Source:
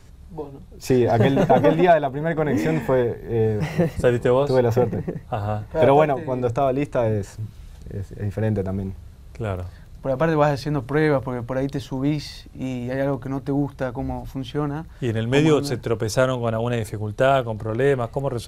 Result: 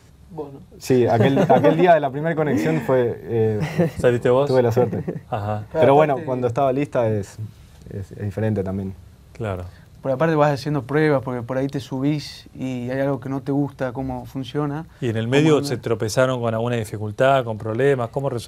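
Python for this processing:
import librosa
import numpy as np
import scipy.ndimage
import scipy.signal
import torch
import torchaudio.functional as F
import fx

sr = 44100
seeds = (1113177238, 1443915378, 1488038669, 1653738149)

y = scipy.signal.sosfilt(scipy.signal.butter(2, 89.0, 'highpass', fs=sr, output='sos'), x)
y = y * 10.0 ** (1.5 / 20.0)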